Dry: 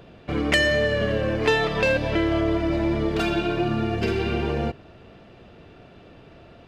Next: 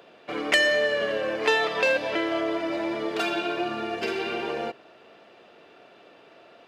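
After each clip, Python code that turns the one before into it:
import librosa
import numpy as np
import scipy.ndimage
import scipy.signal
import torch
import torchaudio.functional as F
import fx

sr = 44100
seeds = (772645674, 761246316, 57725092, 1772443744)

y = scipy.signal.sosfilt(scipy.signal.butter(2, 440.0, 'highpass', fs=sr, output='sos'), x)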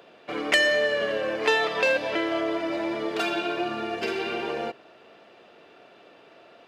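y = x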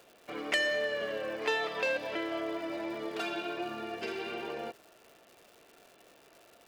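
y = fx.dmg_crackle(x, sr, seeds[0], per_s=310.0, level_db=-38.0)
y = y * 10.0 ** (-8.5 / 20.0)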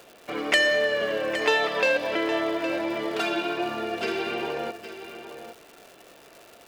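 y = x + 10.0 ** (-11.5 / 20.0) * np.pad(x, (int(814 * sr / 1000.0), 0))[:len(x)]
y = y * 10.0 ** (8.5 / 20.0)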